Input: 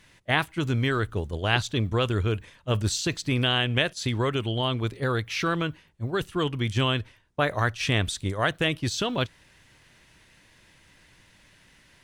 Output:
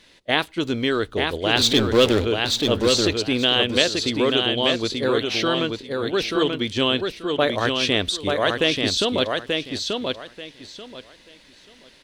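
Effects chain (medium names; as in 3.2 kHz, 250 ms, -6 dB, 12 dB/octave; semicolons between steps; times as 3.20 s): 1.57–2.25 s: power-law waveshaper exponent 0.5; graphic EQ 125/250/500/4000 Hz -9/+6/+8/+11 dB; feedback delay 885 ms, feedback 22%, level -4 dB; trim -1 dB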